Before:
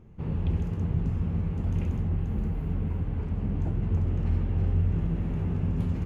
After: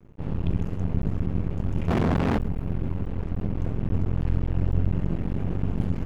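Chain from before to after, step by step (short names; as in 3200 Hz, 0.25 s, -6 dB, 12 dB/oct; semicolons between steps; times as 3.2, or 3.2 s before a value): half-wave rectifier; 1.88–2.38 overdrive pedal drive 45 dB, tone 1200 Hz, clips at -18.5 dBFS; gain +5 dB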